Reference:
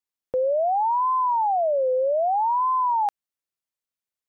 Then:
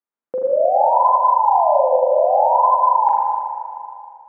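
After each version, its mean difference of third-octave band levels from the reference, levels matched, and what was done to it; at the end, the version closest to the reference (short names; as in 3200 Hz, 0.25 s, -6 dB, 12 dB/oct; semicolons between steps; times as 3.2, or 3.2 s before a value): 5.0 dB: Chebyshev band-pass 220–1400 Hz, order 2; spring tank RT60 2.5 s, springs 38/43 ms, chirp 55 ms, DRR -4.5 dB; gain +2 dB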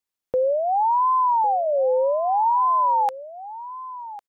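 1.0 dB: dynamic EQ 660 Hz, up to -5 dB, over -37 dBFS, Q 4.5; on a send: echo 1.102 s -15.5 dB; on the sum: gain +3 dB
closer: second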